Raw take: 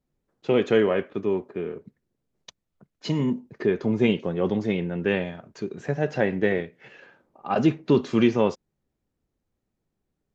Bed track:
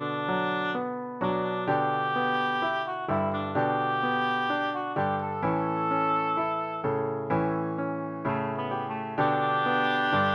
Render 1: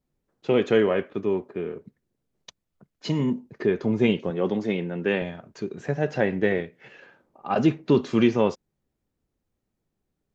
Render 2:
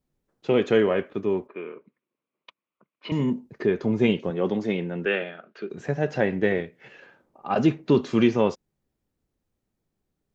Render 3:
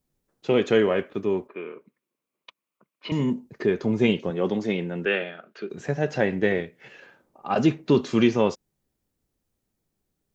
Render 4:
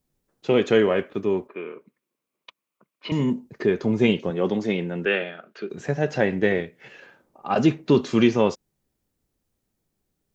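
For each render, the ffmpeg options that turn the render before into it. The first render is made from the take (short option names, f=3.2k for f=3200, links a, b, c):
-filter_complex "[0:a]asettb=1/sr,asplit=3[a][b][c];[a]atrim=end=4.304[d];[b]atrim=start=4.3:end=5.22,asetpts=PTS-STARTPTS,afade=t=in:d=0.004:c=qsin,afade=t=out:st=0.916:d=0.004:c=qsin,highpass=160[e];[c]atrim=start=5.216[f];[d][e]acrossfade=d=0.004:c1=hsin:c2=qsin[g];[g][f]acrossfade=d=0.004:c1=qsin:c2=hsin"
-filter_complex "[0:a]asettb=1/sr,asplit=3[a][b][c];[a]atrim=end=1.474[d];[b]atrim=start=1.47:end=3.12,asetpts=PTS-STARTPTS,afade=t=in:d=0.004:c=qsin,afade=t=out:st=1.646:d=0.004:c=qsin,highpass=360,equalizer=f=430:t=q:w=4:g=-4,equalizer=f=750:t=q:w=4:g=-8,equalizer=f=1.1k:t=q:w=4:g=8,equalizer=f=1.7k:t=q:w=4:g=-6,equalizer=f=2.4k:t=q:w=4:g=6,lowpass=f=3.1k:w=0.5412,lowpass=f=3.1k:w=1.3066[e];[c]atrim=start=3.116[f];[d][e]acrossfade=d=0.004:c1=hsin:c2=qsin[g];[g][f]acrossfade=d=0.004:c1=qsin:c2=hsin,asettb=1/sr,asplit=3[h][i][j];[h]atrim=end=5.054[k];[i]atrim=start=5.05:end=5.7,asetpts=PTS-STARTPTS,afade=t=in:d=0.004:c=qsin,afade=t=out:st=0.646:d=0.004:c=qsin,highpass=f=230:w=0.5412,highpass=f=230:w=1.3066,equalizer=f=270:t=q:w=4:g=-9,equalizer=f=940:t=q:w=4:g=-9,equalizer=f=1.4k:t=q:w=4:g=9,equalizer=f=2.8k:t=q:w=4:g=4,lowpass=f=4k:w=0.5412,lowpass=f=4k:w=1.3066[l];[j]atrim=start=5.696[m];[k][l]acrossfade=d=0.004:c1=hsin:c2=qsin[n];[n][m]acrossfade=d=0.004:c1=qsin:c2=hsin"
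-af "highshelf=f=4.7k:g=7.5"
-af "volume=1.5dB"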